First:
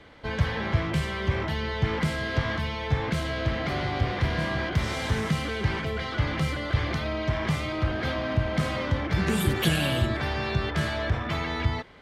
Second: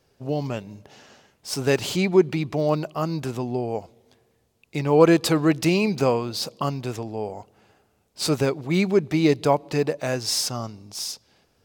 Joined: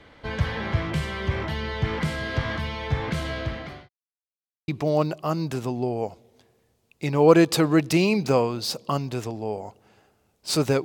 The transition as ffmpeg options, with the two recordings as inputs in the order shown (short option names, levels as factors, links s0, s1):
-filter_complex "[0:a]apad=whole_dur=10.84,atrim=end=10.84,asplit=2[s0][s1];[s0]atrim=end=3.89,asetpts=PTS-STARTPTS,afade=t=out:st=3.32:d=0.57[s2];[s1]atrim=start=3.89:end=4.68,asetpts=PTS-STARTPTS,volume=0[s3];[1:a]atrim=start=2.4:end=8.56,asetpts=PTS-STARTPTS,afade=t=in:d=0.004:c=hsin[s4];[s2][s3][s4]concat=n=3:v=0:a=1"